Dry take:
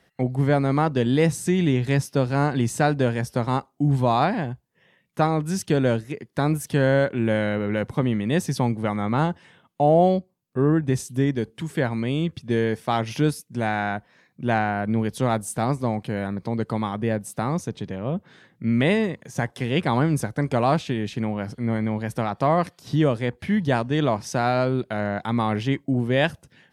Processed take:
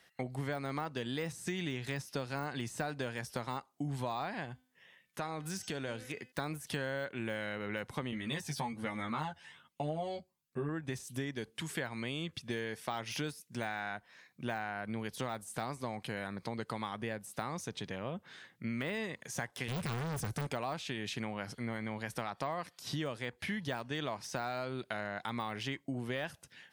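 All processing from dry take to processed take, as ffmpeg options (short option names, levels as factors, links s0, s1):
-filter_complex "[0:a]asettb=1/sr,asplit=3[s0][s1][s2];[s0]atrim=end=4.454[s3];[s1]atrim=start=4.45:end=6.32,asetpts=PTS-STARTPTS,afade=t=in:d=0.004:c=qsin,afade=t=out:st=1.866:d=0.004:c=qsin,bandreject=f=254:t=h:w=4,bandreject=f=508:t=h:w=4,bandreject=f=762:t=h:w=4,bandreject=f=1016:t=h:w=4,bandreject=f=1270:t=h:w=4,bandreject=f=1524:t=h:w=4,bandreject=f=1778:t=h:w=4,bandreject=f=2032:t=h:w=4,bandreject=f=2286:t=h:w=4,bandreject=f=2540:t=h:w=4,bandreject=f=2794:t=h:w=4,bandreject=f=3048:t=h:w=4,bandreject=f=3302:t=h:w=4,bandreject=f=3556:t=h:w=4,bandreject=f=3810:t=h:w=4,bandreject=f=4064:t=h:w=4,bandreject=f=4318:t=h:w=4,bandreject=f=4572:t=h:w=4,bandreject=f=4826:t=h:w=4,bandreject=f=5080:t=h:w=4,bandreject=f=5334:t=h:w=4,bandreject=f=5588:t=h:w=4,bandreject=f=5842:t=h:w=4,bandreject=f=6096:t=h:w=4,bandreject=f=6350:t=h:w=4,bandreject=f=6604:t=h:w=4,bandreject=f=6858:t=h:w=4,bandreject=f=7112:t=h:w=4,bandreject=f=7366:t=h:w=4,bandreject=f=7620:t=h:w=4,bandreject=f=7874:t=h:w=4,acompressor=threshold=0.0447:ratio=3:attack=3.2:release=140:knee=1:detection=peak[s4];[s2]atrim=start=6.316[s5];[s3][s4]acrossfade=d=0.004:c1=hsin:c2=qsin[s6];[s6][s5]acrossfade=d=0.004:c1=qsin:c2=hsin,asettb=1/sr,asplit=3[s7][s8][s9];[s7]atrim=end=8.114[s10];[s8]atrim=start=8.11:end=10.69,asetpts=PTS-STARTPTS,afade=t=in:d=0.004:c=qsin,afade=t=out:st=2.576:d=0.004:c=qsin,flanger=delay=0.3:depth=1.1:regen=38:speed=1.2:shape=triangular,asplit=2[s11][s12];[s12]adelay=13,volume=0.794[s13];[s11][s13]amix=inputs=2:normalize=0,atrim=end_sample=113778[s14];[s9]atrim=start=10.686[s15];[s10][s14]acrossfade=d=0.004:c1=hsin:c2=qsin[s16];[s16][s15]acrossfade=d=0.004:c1=qsin:c2=hsin,asettb=1/sr,asplit=3[s17][s18][s19];[s17]atrim=end=19.684[s20];[s18]atrim=start=19.68:end=20.47,asetpts=PTS-STARTPTS,afade=t=in:d=0.004:c=qsin,afade=t=out:st=0.786:d=0.004:c=qsin,bass=f=250:g=14,treble=f=4000:g=11,asoftclip=type=hard:threshold=0.106[s21];[s19]atrim=start=20.466[s22];[s20][s21]acrossfade=d=0.004:c1=hsin:c2=qsin[s23];[s23][s22]acrossfade=d=0.004:c1=qsin:c2=hsin,deesser=0.9,tiltshelf=f=800:g=-7,acompressor=threshold=0.0355:ratio=6,volume=0.562"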